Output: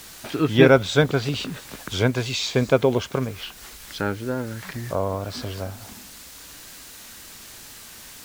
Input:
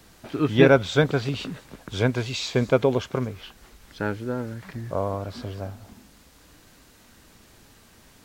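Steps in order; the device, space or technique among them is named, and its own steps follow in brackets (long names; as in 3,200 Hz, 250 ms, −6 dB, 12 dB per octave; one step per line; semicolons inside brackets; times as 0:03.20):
noise-reduction cassette on a plain deck (one half of a high-frequency compander encoder only; tape wow and flutter; white noise bed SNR 33 dB)
high-shelf EQ 4,400 Hz +5 dB
level +1.5 dB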